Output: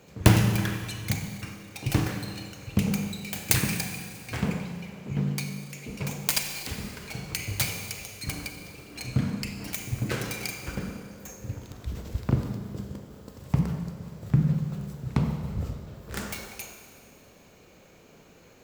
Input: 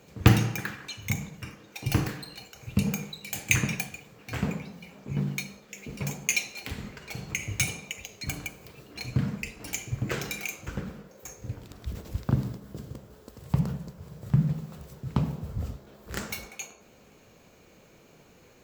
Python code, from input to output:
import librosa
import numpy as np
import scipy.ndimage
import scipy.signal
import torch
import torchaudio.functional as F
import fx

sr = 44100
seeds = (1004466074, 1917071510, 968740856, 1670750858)

y = fx.self_delay(x, sr, depth_ms=0.89)
y = fx.rev_schroeder(y, sr, rt60_s=2.1, comb_ms=31, drr_db=6.0)
y = y * librosa.db_to_amplitude(1.0)